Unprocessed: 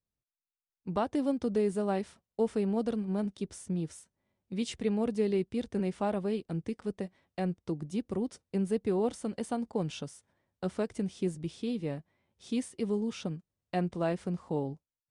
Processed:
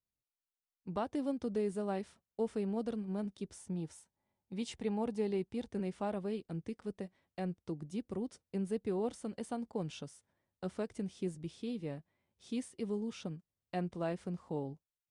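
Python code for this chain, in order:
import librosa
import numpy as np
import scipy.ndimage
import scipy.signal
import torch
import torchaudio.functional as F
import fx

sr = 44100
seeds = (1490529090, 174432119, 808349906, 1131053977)

y = fx.peak_eq(x, sr, hz=850.0, db=10.0, octaves=0.32, at=(3.56, 5.69))
y = F.gain(torch.from_numpy(y), -6.0).numpy()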